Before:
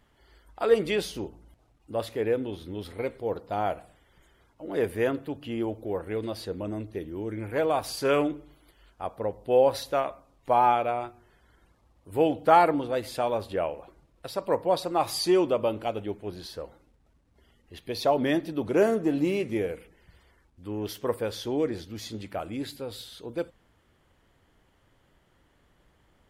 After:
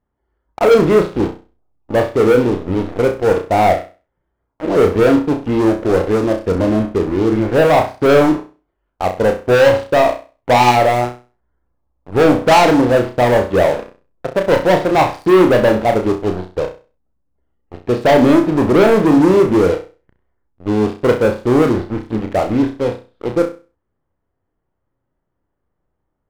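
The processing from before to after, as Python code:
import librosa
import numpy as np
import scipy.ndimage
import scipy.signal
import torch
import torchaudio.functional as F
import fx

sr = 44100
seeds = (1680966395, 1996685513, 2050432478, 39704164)

p1 = scipy.signal.sosfilt(scipy.signal.butter(2, 1200.0, 'lowpass', fs=sr, output='sos'), x)
p2 = fx.backlash(p1, sr, play_db=-28.5)
p3 = p1 + (p2 * librosa.db_to_amplitude(-10.5))
p4 = fx.leveller(p3, sr, passes=5)
p5 = fx.room_flutter(p4, sr, wall_m=5.6, rt60_s=0.33)
y = p5 * librosa.db_to_amplitude(-1.0)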